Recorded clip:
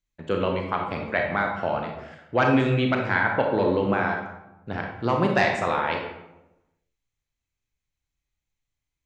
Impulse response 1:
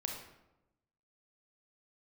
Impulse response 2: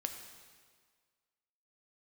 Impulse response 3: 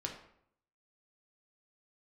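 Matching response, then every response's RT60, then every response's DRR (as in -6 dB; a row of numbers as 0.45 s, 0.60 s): 1; 0.95 s, 1.7 s, 0.70 s; 1.0 dB, 4.5 dB, 0.5 dB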